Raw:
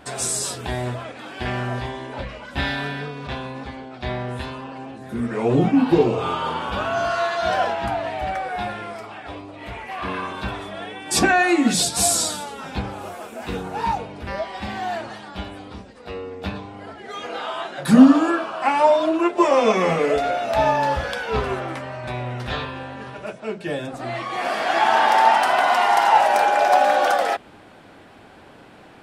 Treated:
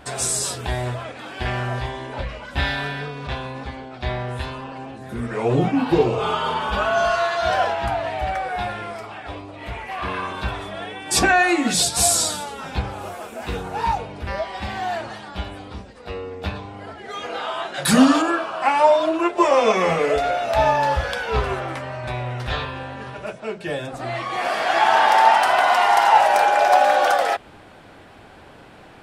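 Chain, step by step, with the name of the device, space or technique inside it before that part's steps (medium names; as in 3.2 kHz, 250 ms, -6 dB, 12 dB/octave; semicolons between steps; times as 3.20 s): low shelf boost with a cut just above (bass shelf 77 Hz +7 dB; peaking EQ 250 Hz -3 dB 1.1 oct); 6.19–7.16 s: comb 4.7 ms, depth 65%; 17.74–18.22 s: treble shelf 2.1 kHz +10.5 dB; dynamic bell 220 Hz, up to -4 dB, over -35 dBFS, Q 1.1; trim +1.5 dB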